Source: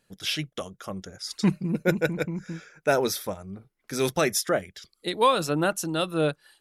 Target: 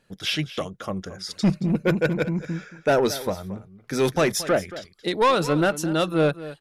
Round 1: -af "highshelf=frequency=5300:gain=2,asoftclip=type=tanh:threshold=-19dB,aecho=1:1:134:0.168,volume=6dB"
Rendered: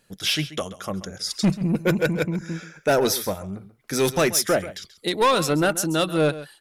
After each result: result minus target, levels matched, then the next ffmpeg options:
echo 92 ms early; 8,000 Hz band +6.0 dB
-af "highshelf=frequency=5300:gain=2,asoftclip=type=tanh:threshold=-19dB,aecho=1:1:226:0.168,volume=6dB"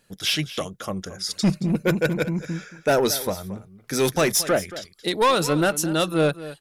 8,000 Hz band +6.0 dB
-af "highshelf=frequency=5300:gain=-10,asoftclip=type=tanh:threshold=-19dB,aecho=1:1:226:0.168,volume=6dB"

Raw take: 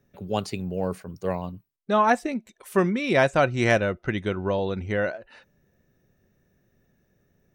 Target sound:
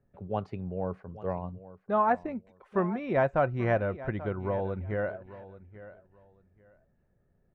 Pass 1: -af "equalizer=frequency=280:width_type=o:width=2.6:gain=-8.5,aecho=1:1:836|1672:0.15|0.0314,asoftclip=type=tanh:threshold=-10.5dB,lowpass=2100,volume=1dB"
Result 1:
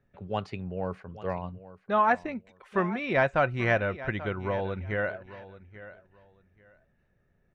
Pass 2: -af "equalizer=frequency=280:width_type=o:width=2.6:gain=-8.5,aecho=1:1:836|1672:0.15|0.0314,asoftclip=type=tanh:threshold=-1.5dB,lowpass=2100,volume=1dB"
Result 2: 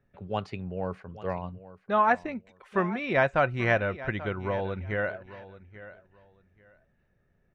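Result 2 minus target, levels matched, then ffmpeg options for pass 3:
2,000 Hz band +6.5 dB
-af "equalizer=frequency=280:width_type=o:width=2.6:gain=-8.5,aecho=1:1:836|1672:0.15|0.0314,asoftclip=type=tanh:threshold=-1.5dB,lowpass=990,volume=1dB"

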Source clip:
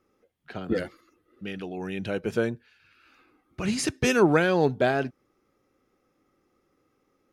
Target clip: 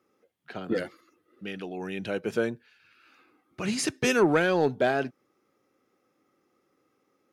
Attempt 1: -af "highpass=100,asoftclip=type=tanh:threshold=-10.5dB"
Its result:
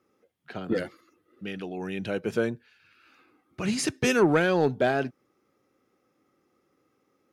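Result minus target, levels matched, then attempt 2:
125 Hz band +2.5 dB
-af "highpass=100,lowshelf=frequency=140:gain=-7,asoftclip=type=tanh:threshold=-10.5dB"

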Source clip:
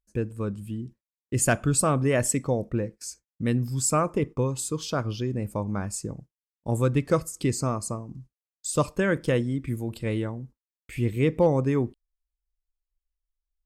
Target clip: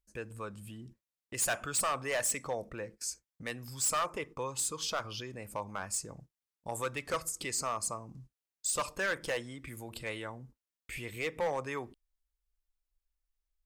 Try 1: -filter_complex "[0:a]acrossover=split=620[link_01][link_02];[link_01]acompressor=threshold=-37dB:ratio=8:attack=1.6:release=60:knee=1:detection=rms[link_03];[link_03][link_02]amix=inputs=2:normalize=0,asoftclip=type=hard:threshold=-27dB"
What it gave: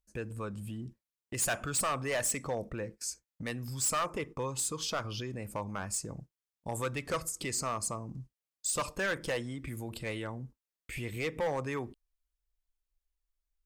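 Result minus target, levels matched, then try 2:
downward compressor: peak gain reduction −7 dB
-filter_complex "[0:a]acrossover=split=620[link_01][link_02];[link_01]acompressor=threshold=-45dB:ratio=8:attack=1.6:release=60:knee=1:detection=rms[link_03];[link_03][link_02]amix=inputs=2:normalize=0,asoftclip=type=hard:threshold=-27dB"

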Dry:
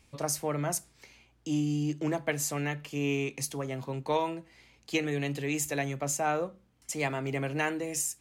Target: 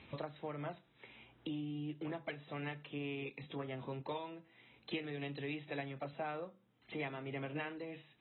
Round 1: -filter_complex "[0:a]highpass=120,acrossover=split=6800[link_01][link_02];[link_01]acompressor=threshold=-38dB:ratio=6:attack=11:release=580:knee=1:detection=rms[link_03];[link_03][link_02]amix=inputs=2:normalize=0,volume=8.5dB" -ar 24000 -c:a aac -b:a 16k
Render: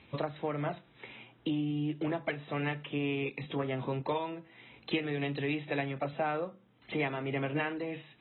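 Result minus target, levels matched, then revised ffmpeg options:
downward compressor: peak gain reduction −9 dB
-filter_complex "[0:a]highpass=120,acrossover=split=6800[link_01][link_02];[link_01]acompressor=threshold=-49dB:ratio=6:attack=11:release=580:knee=1:detection=rms[link_03];[link_03][link_02]amix=inputs=2:normalize=0,volume=8.5dB" -ar 24000 -c:a aac -b:a 16k

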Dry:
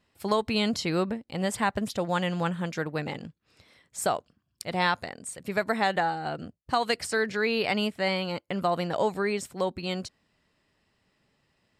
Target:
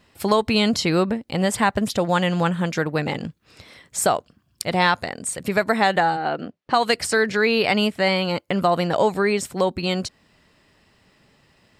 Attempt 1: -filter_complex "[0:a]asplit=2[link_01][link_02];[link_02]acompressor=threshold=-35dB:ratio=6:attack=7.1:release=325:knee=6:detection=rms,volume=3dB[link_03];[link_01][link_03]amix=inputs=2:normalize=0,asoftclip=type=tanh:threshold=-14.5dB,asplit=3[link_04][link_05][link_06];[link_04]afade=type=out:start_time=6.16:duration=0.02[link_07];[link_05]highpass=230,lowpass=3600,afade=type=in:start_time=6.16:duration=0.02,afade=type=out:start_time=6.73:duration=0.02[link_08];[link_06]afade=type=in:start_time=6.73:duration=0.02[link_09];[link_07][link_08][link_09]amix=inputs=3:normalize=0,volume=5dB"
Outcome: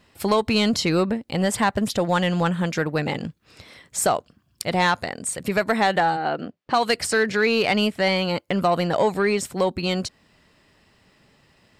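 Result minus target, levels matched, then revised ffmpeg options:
soft clipping: distortion +20 dB
-filter_complex "[0:a]asplit=2[link_01][link_02];[link_02]acompressor=threshold=-35dB:ratio=6:attack=7.1:release=325:knee=6:detection=rms,volume=3dB[link_03];[link_01][link_03]amix=inputs=2:normalize=0,asoftclip=type=tanh:threshold=-3dB,asplit=3[link_04][link_05][link_06];[link_04]afade=type=out:start_time=6.16:duration=0.02[link_07];[link_05]highpass=230,lowpass=3600,afade=type=in:start_time=6.16:duration=0.02,afade=type=out:start_time=6.73:duration=0.02[link_08];[link_06]afade=type=in:start_time=6.73:duration=0.02[link_09];[link_07][link_08][link_09]amix=inputs=3:normalize=0,volume=5dB"

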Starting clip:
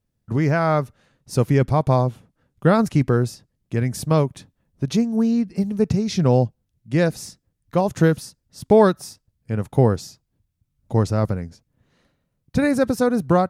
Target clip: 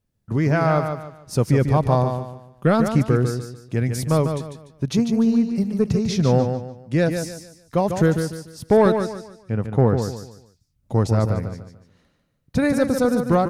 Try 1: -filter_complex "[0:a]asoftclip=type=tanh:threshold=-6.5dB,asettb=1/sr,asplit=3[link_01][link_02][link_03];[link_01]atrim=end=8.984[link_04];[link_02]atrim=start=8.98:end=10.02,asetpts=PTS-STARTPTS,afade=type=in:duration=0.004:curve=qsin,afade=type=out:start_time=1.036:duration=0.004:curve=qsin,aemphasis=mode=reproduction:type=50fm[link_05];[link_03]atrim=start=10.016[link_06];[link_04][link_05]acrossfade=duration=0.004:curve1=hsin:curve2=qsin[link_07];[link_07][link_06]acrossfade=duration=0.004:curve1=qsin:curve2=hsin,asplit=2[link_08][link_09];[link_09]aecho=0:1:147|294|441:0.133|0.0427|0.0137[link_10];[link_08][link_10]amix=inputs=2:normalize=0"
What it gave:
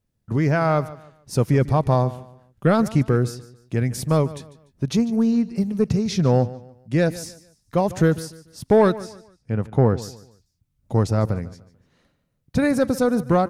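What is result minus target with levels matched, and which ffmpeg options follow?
echo-to-direct −10.5 dB
-filter_complex "[0:a]asoftclip=type=tanh:threshold=-6.5dB,asettb=1/sr,asplit=3[link_01][link_02][link_03];[link_01]atrim=end=8.984[link_04];[link_02]atrim=start=8.98:end=10.02,asetpts=PTS-STARTPTS,afade=type=in:duration=0.004:curve=qsin,afade=type=out:start_time=1.036:duration=0.004:curve=qsin,aemphasis=mode=reproduction:type=50fm[link_05];[link_03]atrim=start=10.016[link_06];[link_04][link_05]acrossfade=duration=0.004:curve1=hsin:curve2=qsin[link_07];[link_07][link_06]acrossfade=duration=0.004:curve1=qsin:curve2=hsin,asplit=2[link_08][link_09];[link_09]aecho=0:1:147|294|441|588:0.447|0.143|0.0457|0.0146[link_10];[link_08][link_10]amix=inputs=2:normalize=0"

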